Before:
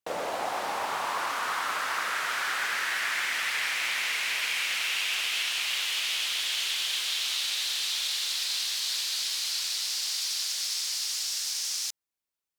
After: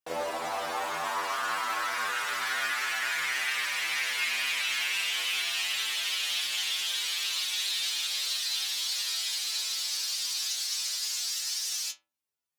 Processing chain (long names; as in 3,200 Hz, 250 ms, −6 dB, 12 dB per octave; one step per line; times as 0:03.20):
stiff-string resonator 80 Hz, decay 0.43 s, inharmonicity 0.002
level +9 dB